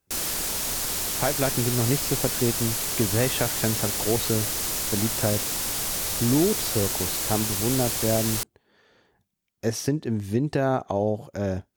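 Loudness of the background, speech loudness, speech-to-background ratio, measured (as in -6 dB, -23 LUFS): -25.5 LUFS, -27.0 LUFS, -1.5 dB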